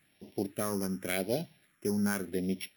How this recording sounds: a buzz of ramps at a fixed pitch in blocks of 8 samples; phasing stages 4, 0.88 Hz, lowest notch 620–1300 Hz

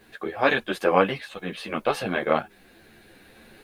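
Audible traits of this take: tremolo saw up 0.83 Hz, depth 45%; a quantiser's noise floor 12-bit, dither triangular; a shimmering, thickened sound

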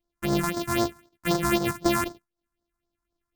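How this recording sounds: a buzz of ramps at a fixed pitch in blocks of 128 samples; phasing stages 4, 3.9 Hz, lowest notch 470–2600 Hz

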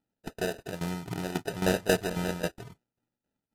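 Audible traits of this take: aliases and images of a low sample rate 1.1 kHz, jitter 0%; tremolo saw down 3.7 Hz, depth 80%; AAC

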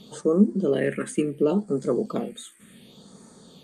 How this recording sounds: phasing stages 4, 0.69 Hz, lowest notch 760–2900 Hz

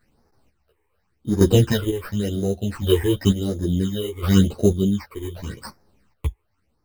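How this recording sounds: aliases and images of a low sample rate 3.4 kHz, jitter 0%; phasing stages 8, 0.91 Hz, lowest notch 180–3000 Hz; chopped level 0.71 Hz, depth 65%, duty 35%; a shimmering, thickened sound

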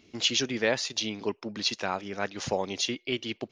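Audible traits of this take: noise floor -64 dBFS; spectral tilt -2.5 dB/octave

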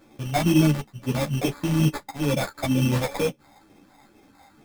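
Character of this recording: a buzz of ramps at a fixed pitch in blocks of 8 samples; phasing stages 4, 2.2 Hz, lowest notch 360–1300 Hz; aliases and images of a low sample rate 2.9 kHz, jitter 0%; a shimmering, thickened sound

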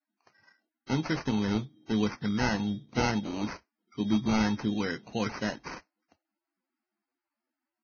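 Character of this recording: aliases and images of a low sample rate 3.5 kHz, jitter 0%; Vorbis

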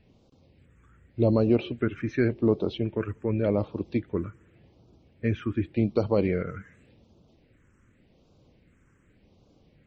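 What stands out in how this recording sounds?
phasing stages 4, 0.87 Hz, lowest notch 680–1800 Hz; MP3

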